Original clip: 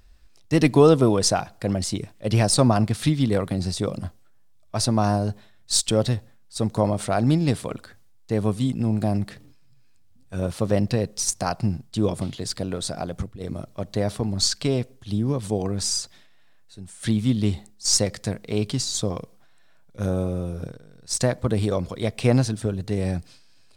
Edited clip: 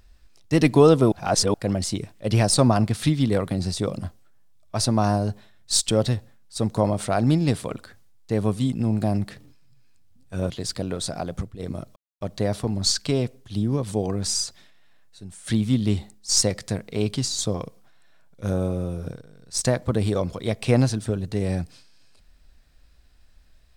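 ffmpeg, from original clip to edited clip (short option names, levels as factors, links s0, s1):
-filter_complex "[0:a]asplit=5[s0][s1][s2][s3][s4];[s0]atrim=end=1.122[s5];[s1]atrim=start=1.118:end=1.542,asetpts=PTS-STARTPTS,areverse[s6];[s2]atrim=start=1.538:end=10.502[s7];[s3]atrim=start=12.308:end=13.77,asetpts=PTS-STARTPTS,afade=t=out:st=1.458:d=0.004:c=hsin,apad=pad_dur=0.25[s8];[s4]atrim=start=13.77,asetpts=PTS-STARTPTS,afade=t=in:d=0.004:c=hsin[s9];[s5][s6]acrossfade=d=0.004:c1=hsin:c2=hsin[s10];[s10][s7]acrossfade=d=0.004:c1=hsin:c2=hsin[s11];[s8][s9]concat=n=2:v=0:a=1[s12];[s11][s12]acrossfade=d=0.004:c1=hsin:c2=hsin"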